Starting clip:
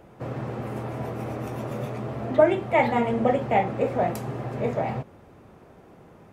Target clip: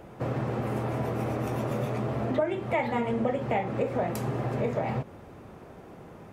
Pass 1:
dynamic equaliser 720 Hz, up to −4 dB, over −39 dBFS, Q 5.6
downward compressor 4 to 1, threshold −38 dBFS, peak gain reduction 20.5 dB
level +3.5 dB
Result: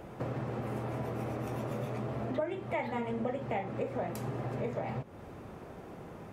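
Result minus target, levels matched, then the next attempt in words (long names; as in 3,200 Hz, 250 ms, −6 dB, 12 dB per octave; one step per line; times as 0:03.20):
downward compressor: peak gain reduction +6.5 dB
dynamic equaliser 720 Hz, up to −4 dB, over −39 dBFS, Q 5.6
downward compressor 4 to 1, threshold −29 dBFS, peak gain reduction 13.5 dB
level +3.5 dB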